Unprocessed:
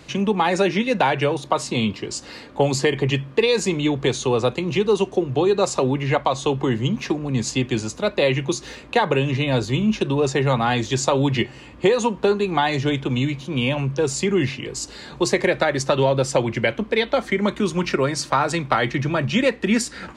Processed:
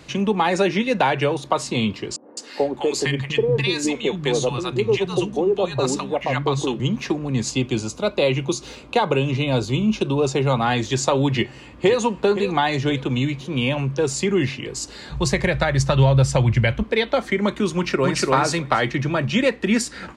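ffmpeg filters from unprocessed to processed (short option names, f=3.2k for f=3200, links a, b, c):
-filter_complex "[0:a]asettb=1/sr,asplit=3[a][b][c];[a]atrim=end=2.164[d];[b]atrim=start=2.16:end=6.8,asetpts=PTS-STARTPTS,afade=t=in:d=0.004:c=qsin,afade=t=out:st=4.636:d=0.004:c=qsin,acrossover=split=220|870[e][f][g];[g]adelay=210[h];[e]adelay=460[i];[i][f][h]amix=inputs=3:normalize=0,atrim=end_sample=204624[j];[c]atrim=start=6.796[k];[d][j]acrossfade=d=0.004:c1=hsin:c2=qsin[l];[l][k]acrossfade=d=0.004:c1=qsin:c2=hsin,asettb=1/sr,asplit=3[m][n][o];[m]atrim=end=7.504[p];[n]atrim=start=7.5:end=10.62,asetpts=PTS-STARTPTS,afade=t=in:d=0.004:c=qsin,afade=t=out:st=3.116:d=0.004:c=qsin,equalizer=f=1.8k:w=7.3:g=-14.5[q];[o]atrim=start=10.616[r];[p][q]acrossfade=d=0.004:c1=hsin:c2=qsin[s];[s][r]acrossfade=d=0.004:c1=qsin:c2=hsin,asplit=2[t][u];[u]afade=t=in:st=11.34:d=0.01,afade=t=out:st=11.99:d=0.01,aecho=0:1:520|1040|1560:0.281838|0.0845515|0.0253654[v];[t][v]amix=inputs=2:normalize=0,asplit=3[w][x][y];[w]afade=t=out:st=15.09:d=0.02[z];[x]asubboost=boost=11.5:cutoff=94,afade=t=in:st=15.09:d=0.02,afade=t=out:st=16.82:d=0.02[aa];[y]afade=t=in:st=16.82:d=0.02[ab];[z][aa][ab]amix=inputs=3:normalize=0,asplit=2[ac][ad];[ad]afade=t=in:st=17.74:d=0.01,afade=t=out:st=18.31:d=0.01,aecho=0:1:290|580:0.841395|0.0841395[ae];[ac][ae]amix=inputs=2:normalize=0"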